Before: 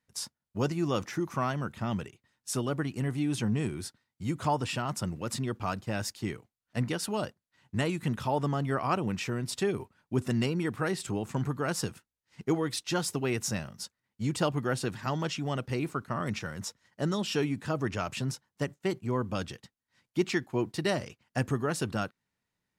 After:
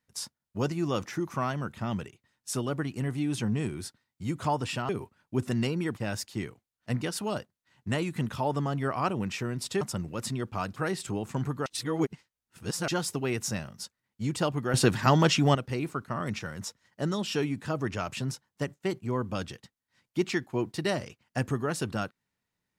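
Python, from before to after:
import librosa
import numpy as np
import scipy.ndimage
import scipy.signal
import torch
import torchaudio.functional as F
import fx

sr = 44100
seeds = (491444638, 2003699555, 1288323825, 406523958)

y = fx.edit(x, sr, fx.swap(start_s=4.89, length_s=0.95, other_s=9.68, other_length_s=1.08),
    fx.reverse_span(start_s=11.66, length_s=1.22),
    fx.clip_gain(start_s=14.74, length_s=0.81, db=10.0), tone=tone)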